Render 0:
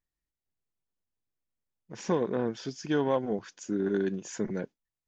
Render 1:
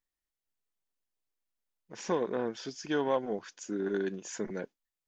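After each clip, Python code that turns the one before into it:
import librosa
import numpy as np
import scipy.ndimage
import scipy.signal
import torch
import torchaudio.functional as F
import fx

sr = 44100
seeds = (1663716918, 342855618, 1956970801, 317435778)

y = fx.peak_eq(x, sr, hz=89.0, db=-11.0, octaves=2.8)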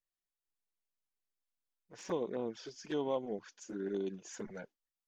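y = fx.env_flanger(x, sr, rest_ms=11.7, full_db=-27.5)
y = F.gain(torch.from_numpy(y), -4.0).numpy()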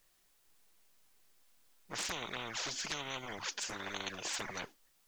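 y = fx.dynamic_eq(x, sr, hz=1200.0, q=0.82, threshold_db=-53.0, ratio=4.0, max_db=4)
y = fx.spectral_comp(y, sr, ratio=10.0)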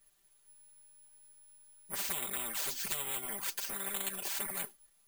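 y = x + 0.96 * np.pad(x, (int(5.1 * sr / 1000.0), 0))[:len(x)]
y = (np.kron(scipy.signal.resample_poly(y, 1, 4), np.eye(4)[0]) * 4)[:len(y)]
y = F.gain(torch.from_numpy(y), -4.5).numpy()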